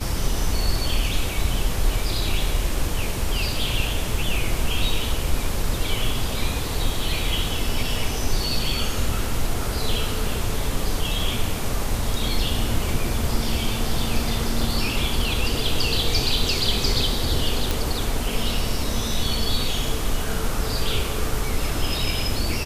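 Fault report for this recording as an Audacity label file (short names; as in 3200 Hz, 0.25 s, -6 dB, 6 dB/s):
17.710000	17.710000	pop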